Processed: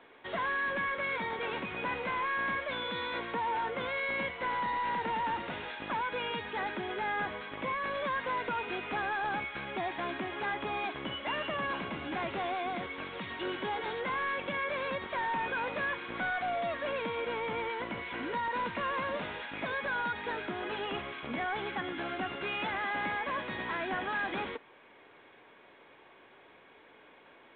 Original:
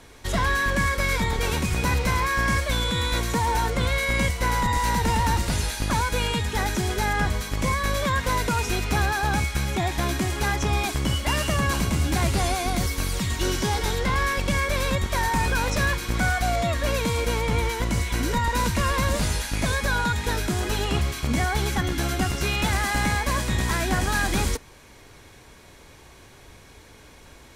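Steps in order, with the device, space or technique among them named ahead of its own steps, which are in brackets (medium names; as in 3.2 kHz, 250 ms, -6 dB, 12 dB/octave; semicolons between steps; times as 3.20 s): telephone (band-pass 330–3100 Hz; saturation -21.5 dBFS, distortion -17 dB; trim -5 dB; µ-law 64 kbps 8 kHz)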